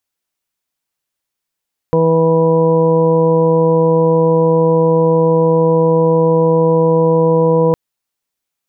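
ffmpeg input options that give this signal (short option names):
-f lavfi -i "aevalsrc='0.188*sin(2*PI*163*t)+0.0944*sin(2*PI*326*t)+0.299*sin(2*PI*489*t)+0.0473*sin(2*PI*652*t)+0.0299*sin(2*PI*815*t)+0.1*sin(2*PI*978*t)':d=5.81:s=44100"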